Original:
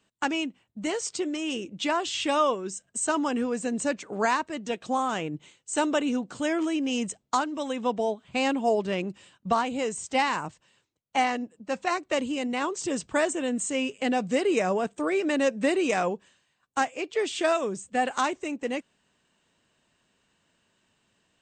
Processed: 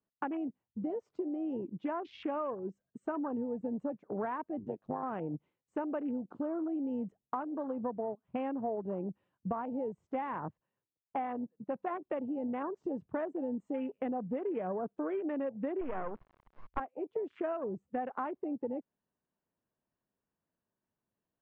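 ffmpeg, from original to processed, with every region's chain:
-filter_complex "[0:a]asettb=1/sr,asplit=3[s0][s1][s2];[s0]atrim=end=4.594[s3];[s1]atrim=start=4.59:end=5.03,asetpts=PTS-STARTPTS,afade=t=in:d=0.004:c=qsin,afade=t=out:st=0.436:d=0.004:c=qsin,highpass=90,tremolo=f=100:d=0.889[s4];[s2]atrim=start=5.026[s5];[s3][s4]acrossfade=d=0.004:c1=hsin:c2=qsin[s6];[s6][s5]acrossfade=d=0.004:c1=qsin:c2=hsin,asettb=1/sr,asplit=3[s7][s8][s9];[s7]atrim=end=15.814[s10];[s8]atrim=start=15.81:end=16.8,asetpts=PTS-STARTPTS,afade=t=in:d=0.004:c=qsin,afade=t=out:st=0.986:d=0.004:c=qsin,aeval=exprs='val(0)+0.5*0.0158*sgn(val(0))':c=same,equalizer=f=1100:t=o:w=0.55:g=12,acrusher=bits=3:dc=4:mix=0:aa=0.000001[s11];[s9]atrim=start=16.796[s12];[s10][s11]acrossfade=d=0.004:c1=hsin:c2=qsin[s13];[s13][s12]acrossfade=d=0.004:c1=qsin:c2=hsin,afwtdn=0.0251,lowpass=1100,acompressor=threshold=0.0224:ratio=6"

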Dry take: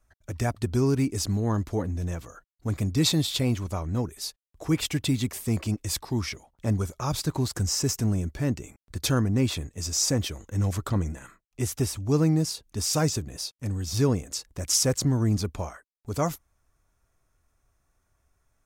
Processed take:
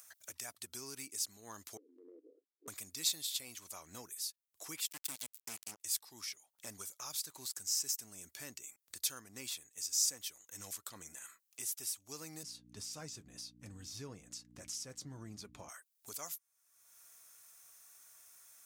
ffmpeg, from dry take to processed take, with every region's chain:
-filter_complex "[0:a]asettb=1/sr,asplit=3[s0][s1][s2];[s0]atrim=end=1.774[s3];[s1]atrim=start=1.77:end=2.68,asetpts=PTS-STARTPTS,afade=t=in:d=0.004:c=qsin,afade=t=out:st=0.906:d=0.004:c=qsin,asuperpass=centerf=360:order=8:qfactor=1.9,acompressor=threshold=0.00794:ratio=2.5:attack=3.2:release=140:knee=1:detection=peak[s4];[s2]atrim=start=2.676[s5];[s3][s4]acrossfade=d=0.004:c1=hsin:c2=qsin[s6];[s6][s5]acrossfade=d=0.004:c1=qsin:c2=hsin,asettb=1/sr,asplit=3[s7][s8][s9];[s7]atrim=end=4.884[s10];[s8]atrim=start=4.88:end=5.8,asetpts=PTS-STARTPTS,afade=t=in:d=0.004:c=qsin,afade=t=out:st=0.916:d=0.004:c=qsin,deesser=0.3,bandreject=f=3800:w=7.2,acrusher=bits=3:mix=0:aa=0.5[s11];[s9]atrim=start=5.796[s12];[s10][s11]acrossfade=d=0.004:c1=hsin:c2=qsin[s13];[s13][s12]acrossfade=d=0.004:c1=qsin:c2=hsin,asettb=1/sr,asplit=3[s14][s15][s16];[s14]atrim=end=12.434[s17];[s15]atrim=start=12.43:end=15.69,asetpts=PTS-STARTPTS,afade=t=in:d=0.004:c=qsin,afade=t=out:st=3.256:d=0.004:c=qsin,aemphasis=mode=reproduction:type=riaa,flanger=delay=4.9:depth=2.3:regen=-58:speed=1:shape=triangular,aeval=exprs='val(0)+0.0316*(sin(2*PI*60*n/s)+sin(2*PI*2*60*n/s)/2+sin(2*PI*3*60*n/s)/3+sin(2*PI*4*60*n/s)/4+sin(2*PI*5*60*n/s)/5)':c=same[s18];[s16]atrim=start=15.686[s19];[s17][s18]acrossfade=d=0.004:c1=hsin:c2=qsin[s20];[s20][s19]acrossfade=d=0.004:c1=qsin:c2=hsin,highpass=71,aderivative,acompressor=mode=upward:threshold=0.02:ratio=2.5,volume=0.562"

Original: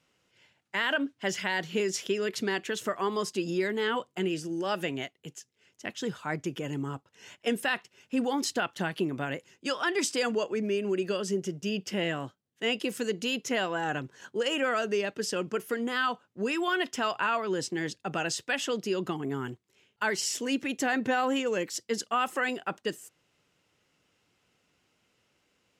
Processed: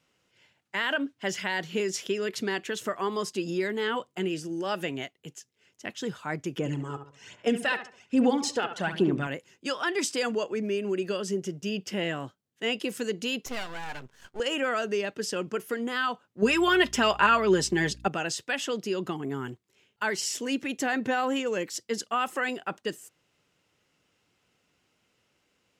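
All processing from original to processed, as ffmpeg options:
-filter_complex "[0:a]asettb=1/sr,asplit=3[s0][s1][s2];[s0]atrim=end=6.584[s3];[s1]atrim=start=6.58:end=9.27,asetpts=PTS-STARTPTS,afade=t=in:d=0.004:c=qsin,afade=t=out:st=2.686:d=0.004:c=qsin,lowpass=f=9400:w=0.5412,lowpass=f=9400:w=1.3066,asplit=2[s4][s5];[s5]adelay=70,lowpass=f=1700:p=1,volume=0.398,asplit=2[s6][s7];[s7]adelay=70,lowpass=f=1700:p=1,volume=0.38,asplit=2[s8][s9];[s9]adelay=70,lowpass=f=1700:p=1,volume=0.38,asplit=2[s10][s11];[s11]adelay=70,lowpass=f=1700:p=1,volume=0.38[s12];[s4][s6][s8][s10][s12]amix=inputs=5:normalize=0,atrim=end_sample=118629,aphaser=in_gain=1:out_gain=1:delay=2.4:decay=0.5:speed=1.2:type=sinusoidal[s13];[s2]atrim=start=9.266[s14];[s3][s13]acrossfade=d=0.004:c1=hsin:c2=qsin[s15];[s15][s14]acrossfade=d=0.004:c1=qsin:c2=hsin,asettb=1/sr,asplit=3[s16][s17][s18];[s16]atrim=end=13.464[s19];[s17]atrim=start=13.46:end=14.4,asetpts=PTS-STARTPTS,afade=t=in:d=0.004:c=qsin,afade=t=out:st=0.936:d=0.004:c=qsin,equalizer=f=330:t=o:w=0.77:g=-6.5,aeval=exprs='max(val(0),0)':c=same[s20];[s18]atrim=start=14.396[s21];[s19][s20]acrossfade=d=0.004:c1=hsin:c2=qsin[s22];[s22][s21]acrossfade=d=0.004:c1=qsin:c2=hsin,asettb=1/sr,asplit=3[s23][s24][s25];[s23]atrim=end=16.424[s26];[s24]atrim=start=16.42:end=18.08,asetpts=PTS-STARTPTS,afade=t=in:d=0.004:c=qsin,afade=t=out:st=1.656:d=0.004:c=qsin,acontrast=53,aecho=1:1:5:0.5,atrim=end_sample=73206,aeval=exprs='val(0)+0.00447*(sin(2*PI*60*n/s)+sin(2*PI*2*60*n/s)/2+sin(2*PI*3*60*n/s)/3+sin(2*PI*4*60*n/s)/4+sin(2*PI*5*60*n/s)/5)':c=same[s27];[s25]atrim=start=18.076[s28];[s26][s27]acrossfade=d=0.004:c1=hsin:c2=qsin[s29];[s29][s28]acrossfade=d=0.004:c1=qsin:c2=hsin"

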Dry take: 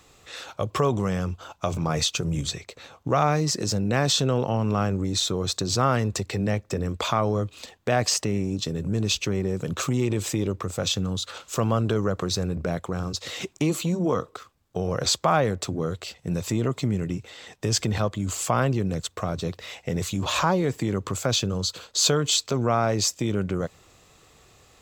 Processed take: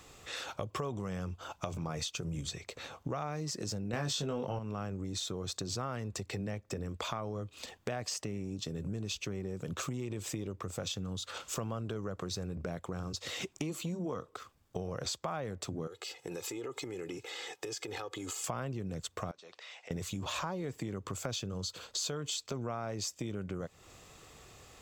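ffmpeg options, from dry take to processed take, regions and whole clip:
-filter_complex "[0:a]asettb=1/sr,asplit=3[s0][s1][s2];[s0]atrim=end=3.934[s3];[s1]atrim=start=3.93:end=4.59,asetpts=PTS-STARTPTS,afade=t=in:d=0.004:c=qsin,afade=t=out:st=0.656:d=0.004:c=qsin,acontrast=63,asplit=2[s4][s5];[s5]adelay=20,volume=0.596[s6];[s4][s6]amix=inputs=2:normalize=0,atrim=end_sample=29106[s7];[s2]atrim=start=4.586[s8];[s3][s7]acrossfade=d=0.004:c1=hsin:c2=qsin[s9];[s9][s8]acrossfade=d=0.004:c1=qsin:c2=hsin,asettb=1/sr,asplit=3[s10][s11][s12];[s10]atrim=end=15.874[s13];[s11]atrim=start=15.87:end=18.44,asetpts=PTS-STARTPTS,afade=t=in:d=0.004:c=qsin,afade=t=out:st=2.566:d=0.004:c=qsin,highpass=300,aecho=1:1:2.4:0.8,atrim=end_sample=113337,acompressor=threshold=0.02:ratio=5:attack=3.2:release=140:knee=1:detection=peak[s14];[s12]atrim=start=18.436[s15];[s13][s14]acrossfade=d=0.004:c1=hsin:c2=qsin[s16];[s16][s15]acrossfade=d=0.004:c1=qsin:c2=hsin,asettb=1/sr,asplit=3[s17][s18][s19];[s17]atrim=end=19.314[s20];[s18]atrim=start=19.31:end=19.91,asetpts=PTS-STARTPTS,afade=t=in:d=0.004:c=qsin,afade=t=out:st=0.596:d=0.004:c=qsin,highpass=690,lowpass=6200,acompressor=threshold=0.00355:ratio=3:attack=3.2:release=140:knee=1:detection=peak[s21];[s19]atrim=start=19.906[s22];[s20][s21]acrossfade=d=0.004:c1=hsin:c2=qsin[s23];[s23][s22]acrossfade=d=0.004:c1=qsin:c2=hsin,bandreject=f=4000:w=22,acompressor=threshold=0.0141:ratio=4"

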